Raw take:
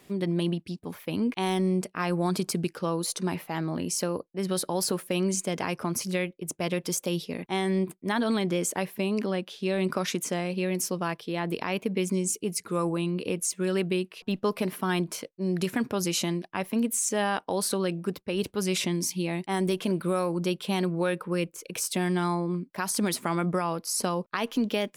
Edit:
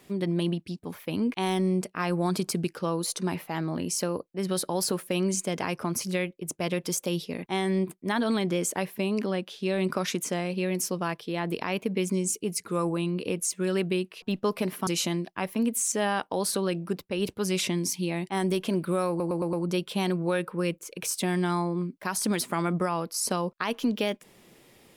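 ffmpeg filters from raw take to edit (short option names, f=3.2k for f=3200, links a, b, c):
-filter_complex "[0:a]asplit=6[a][b][c][d][e][f];[a]atrim=end=14.872[g];[b]atrim=start=16.038:end=20.372[h];[c]atrim=start=20.258:end=20.372[i];[d]atrim=start=20.258:end=20.372[j];[e]atrim=start=20.258:end=20.372[k];[f]atrim=start=20.258[l];[g][h]acrossfade=d=0.004:c1=hsin:c2=hsin[m];[m][i]acrossfade=d=0.004:c1=hsin:c2=hsin[n];[n][j]acrossfade=d=0.004:c1=hsin:c2=hsin[o];[o][k]acrossfade=d=0.004:c1=hsin:c2=hsin[p];[p][l]acrossfade=d=0.004:c1=hsin:c2=hsin"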